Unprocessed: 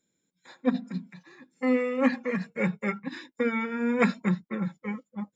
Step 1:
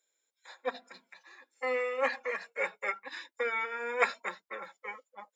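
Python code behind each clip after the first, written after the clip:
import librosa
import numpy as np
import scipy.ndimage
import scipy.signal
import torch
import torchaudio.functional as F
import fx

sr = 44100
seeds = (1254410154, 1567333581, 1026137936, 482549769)

y = scipy.signal.sosfilt(scipy.signal.butter(4, 530.0, 'highpass', fs=sr, output='sos'), x)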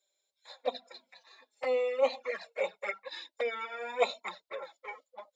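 y = fx.graphic_eq_15(x, sr, hz=(630, 1600, 4000), db=(11, -4, 10))
y = fx.env_flanger(y, sr, rest_ms=5.2, full_db=-24.0)
y = F.gain(torch.from_numpy(y), -1.0).numpy()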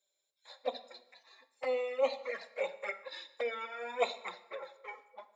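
y = fx.rev_plate(x, sr, seeds[0], rt60_s=0.9, hf_ratio=0.8, predelay_ms=0, drr_db=11.5)
y = F.gain(torch.from_numpy(y), -3.0).numpy()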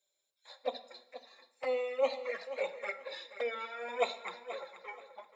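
y = fx.echo_feedback(x, sr, ms=480, feedback_pct=24, wet_db=-13.0)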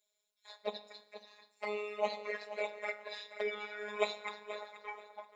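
y = fx.robotise(x, sr, hz=209.0)
y = F.gain(torch.from_numpy(y), 2.5).numpy()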